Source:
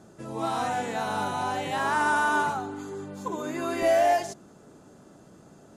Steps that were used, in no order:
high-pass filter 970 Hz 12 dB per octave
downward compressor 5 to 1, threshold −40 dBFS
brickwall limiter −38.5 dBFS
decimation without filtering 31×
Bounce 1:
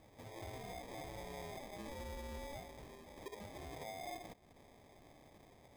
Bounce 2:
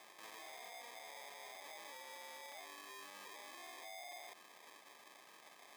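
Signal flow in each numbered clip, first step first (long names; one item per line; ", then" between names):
downward compressor, then high-pass filter, then brickwall limiter, then decimation without filtering
decimation without filtering, then high-pass filter, then brickwall limiter, then downward compressor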